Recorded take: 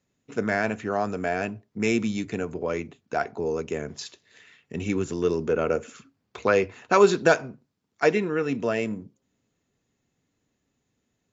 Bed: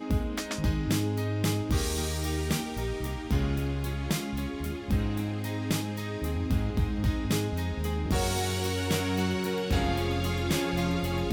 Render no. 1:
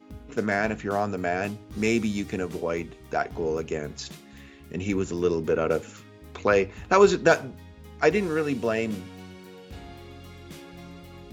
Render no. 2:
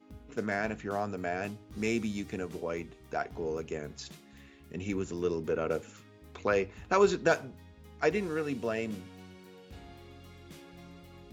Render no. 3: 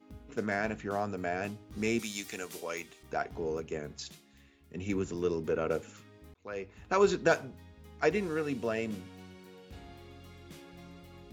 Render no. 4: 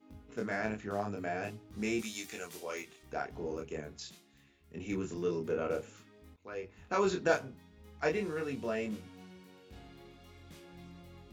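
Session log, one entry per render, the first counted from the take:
mix in bed −15.5 dB
level −7 dB
0:01.99–0:03.03: spectral tilt +4 dB per octave; 0:03.60–0:05.15: multiband upward and downward expander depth 40%; 0:06.34–0:07.12: fade in
chorus effect 0.46 Hz, depth 7.2 ms

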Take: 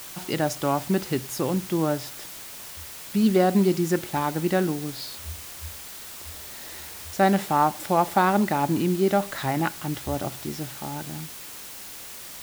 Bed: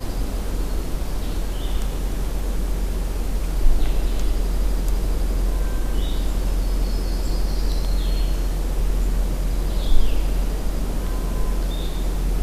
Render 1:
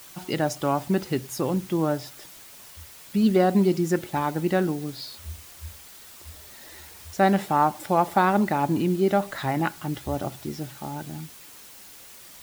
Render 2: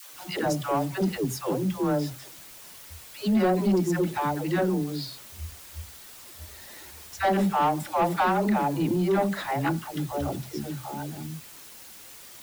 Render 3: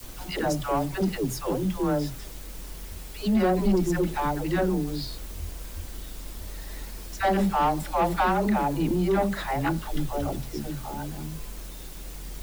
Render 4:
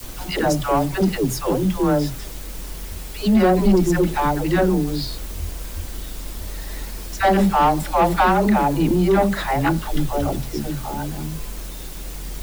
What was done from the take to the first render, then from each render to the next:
broadband denoise 7 dB, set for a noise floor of −40 dBFS
all-pass dispersion lows, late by 143 ms, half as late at 410 Hz; soft clipping −16.5 dBFS, distortion −15 dB
mix in bed −17 dB
level +7 dB

